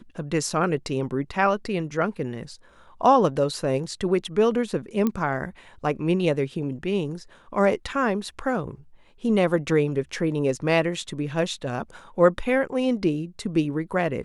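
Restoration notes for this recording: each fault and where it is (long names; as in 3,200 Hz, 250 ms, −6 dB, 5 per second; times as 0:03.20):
0:05.07: click −12 dBFS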